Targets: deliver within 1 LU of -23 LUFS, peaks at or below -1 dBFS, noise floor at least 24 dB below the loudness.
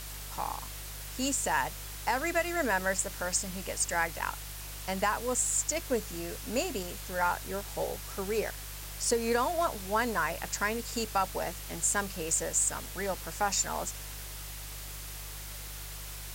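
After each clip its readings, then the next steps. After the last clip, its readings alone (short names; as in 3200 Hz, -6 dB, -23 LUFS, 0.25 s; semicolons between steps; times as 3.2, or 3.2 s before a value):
hum 50 Hz; harmonics up to 150 Hz; hum level -42 dBFS; noise floor -42 dBFS; noise floor target -56 dBFS; loudness -32.0 LUFS; peak -15.0 dBFS; loudness target -23.0 LUFS
-> de-hum 50 Hz, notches 3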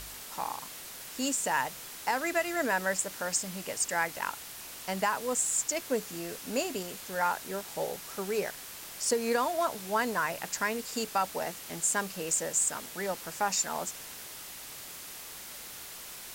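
hum none; noise floor -45 dBFS; noise floor target -56 dBFS
-> noise print and reduce 11 dB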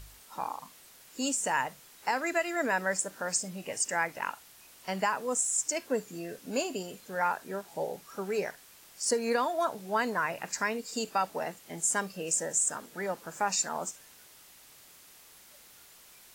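noise floor -56 dBFS; loudness -31.5 LUFS; peak -15.5 dBFS; loudness target -23.0 LUFS
-> gain +8.5 dB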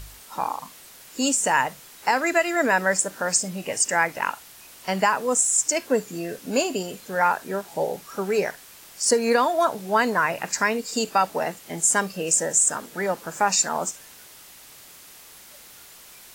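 loudness -23.0 LUFS; peak -7.0 dBFS; noise floor -47 dBFS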